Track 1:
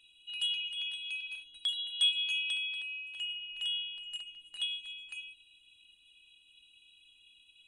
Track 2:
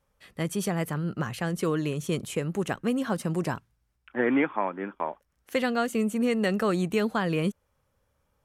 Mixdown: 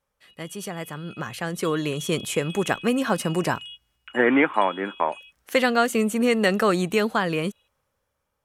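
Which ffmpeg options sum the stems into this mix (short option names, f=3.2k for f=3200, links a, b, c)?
-filter_complex "[0:a]acompressor=threshold=-36dB:ratio=6,volume=-12.5dB[a];[1:a]volume=-2.5dB,asplit=2[b][c];[c]apad=whole_len=338678[d];[a][d]sidechaingate=range=-33dB:threshold=-57dB:ratio=16:detection=peak[e];[e][b]amix=inputs=2:normalize=0,lowshelf=f=310:g=-8,dynaudnorm=f=450:g=7:m=11dB"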